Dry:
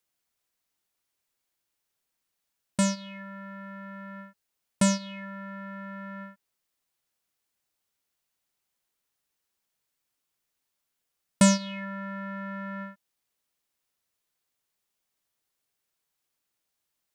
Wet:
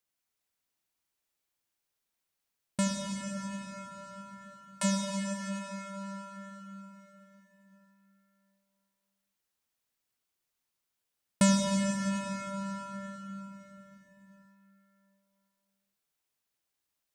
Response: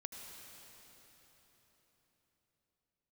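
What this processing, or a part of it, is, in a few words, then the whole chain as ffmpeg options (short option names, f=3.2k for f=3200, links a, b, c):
cathedral: -filter_complex "[0:a]asplit=3[a][b][c];[a]afade=t=out:st=2.87:d=0.02[d];[b]highpass=f=660:w=0.5412,highpass=f=660:w=1.3066,afade=t=in:st=2.87:d=0.02,afade=t=out:st=4.83:d=0.02[e];[c]afade=t=in:st=4.83:d=0.02[f];[d][e][f]amix=inputs=3:normalize=0[g];[1:a]atrim=start_sample=2205[h];[g][h]afir=irnorm=-1:irlink=0"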